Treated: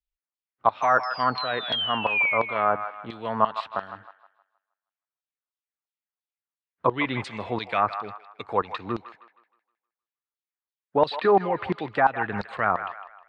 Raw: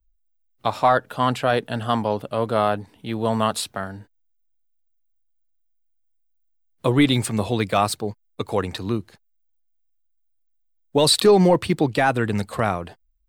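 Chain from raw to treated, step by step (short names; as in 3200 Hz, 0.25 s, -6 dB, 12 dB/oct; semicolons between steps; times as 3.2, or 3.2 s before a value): painted sound fall, 0.82–2.38, 2100–6200 Hz -18 dBFS; tilt -3.5 dB/oct; LFO band-pass saw down 2.9 Hz 990–4400 Hz; on a send: band-limited delay 0.157 s, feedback 37%, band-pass 1400 Hz, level -9.5 dB; on the sum: treble ducked by the level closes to 1900 Hz, closed at -25.5 dBFS; gain +7 dB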